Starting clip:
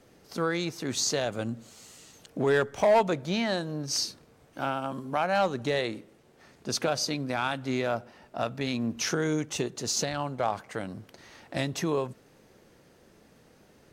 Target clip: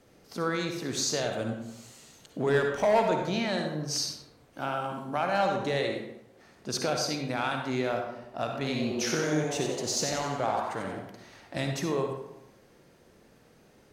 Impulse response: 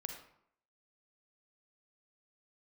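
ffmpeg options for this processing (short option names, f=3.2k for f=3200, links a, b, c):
-filter_complex "[0:a]asettb=1/sr,asplit=3[a][b][c];[a]atrim=end=8.464[d];[b]atrim=start=8.46:end=10.99,asetpts=PTS-STARTPTS,afade=t=in:d=0.004:c=qsin,afade=t=out:st=2.526:d=0.004:c=qsin,asplit=7[e][f][g][h][i][j][k];[f]adelay=90,afreqshift=130,volume=-6dB[l];[g]adelay=180,afreqshift=260,volume=-12.7dB[m];[h]adelay=270,afreqshift=390,volume=-19.5dB[n];[i]adelay=360,afreqshift=520,volume=-26.2dB[o];[j]adelay=450,afreqshift=650,volume=-33dB[p];[k]adelay=540,afreqshift=780,volume=-39.7dB[q];[e][l][m][n][o][p][q]amix=inputs=7:normalize=0,atrim=end_sample=111573[r];[c]atrim=start=10.986[s];[d][r]acrossfade=d=0.004:c1=hsin:c2=qsin[t];[t][s]acrossfade=d=0.004:c1=qsin:c2=hsin[u];[1:a]atrim=start_sample=2205,asetrate=34398,aresample=44100[v];[u][v]afir=irnorm=-1:irlink=0"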